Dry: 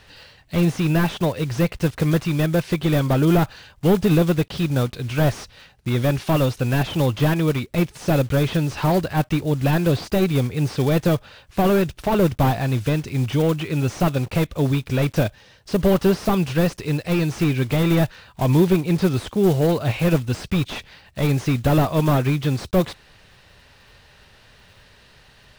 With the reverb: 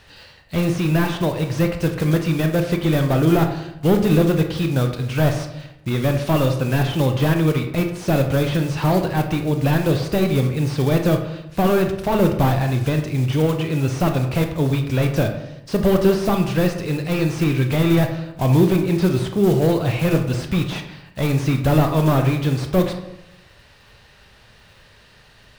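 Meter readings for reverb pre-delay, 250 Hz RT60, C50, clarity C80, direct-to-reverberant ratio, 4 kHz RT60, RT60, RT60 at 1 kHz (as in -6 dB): 23 ms, 1.0 s, 8.0 dB, 10.5 dB, 5.0 dB, 0.50 s, 0.85 s, 0.85 s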